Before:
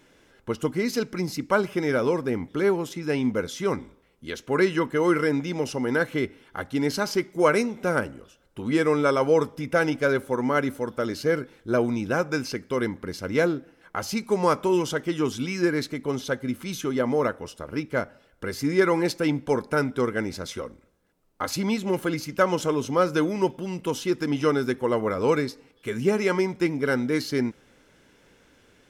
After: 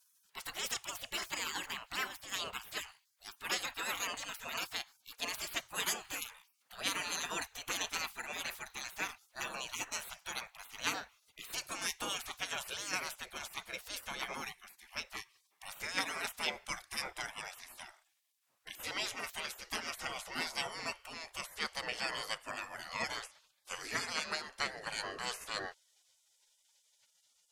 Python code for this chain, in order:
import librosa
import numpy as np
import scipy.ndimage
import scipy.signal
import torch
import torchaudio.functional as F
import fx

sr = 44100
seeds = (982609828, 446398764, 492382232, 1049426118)

y = fx.speed_glide(x, sr, from_pct=135, to_pct=75)
y = fx.spec_gate(y, sr, threshold_db=-25, keep='weak')
y = y * librosa.db_to_amplitude(3.0)